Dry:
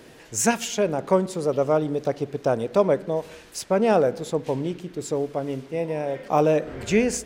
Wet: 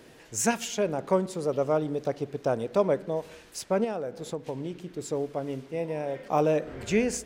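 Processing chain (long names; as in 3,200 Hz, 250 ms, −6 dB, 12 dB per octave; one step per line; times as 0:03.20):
0:03.84–0:04.87: downward compressor 6 to 1, threshold −25 dBFS, peak gain reduction 10.5 dB
level −4.5 dB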